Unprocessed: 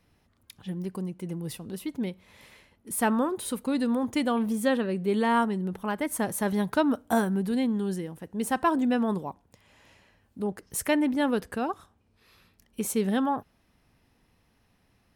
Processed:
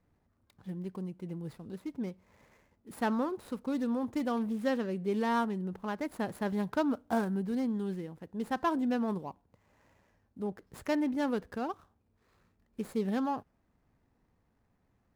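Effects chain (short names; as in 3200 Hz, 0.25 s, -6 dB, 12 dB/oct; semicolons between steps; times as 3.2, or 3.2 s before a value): median filter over 15 samples; gain -5.5 dB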